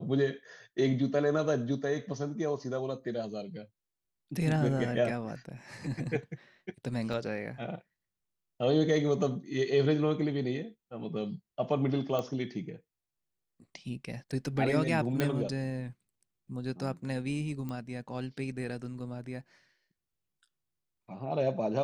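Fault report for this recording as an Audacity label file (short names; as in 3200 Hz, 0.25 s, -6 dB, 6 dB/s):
7.130000	7.130000	gap 4.6 ms
12.190000	12.190000	pop -20 dBFS
15.200000	15.200000	pop -15 dBFS
17.690000	17.690000	pop -26 dBFS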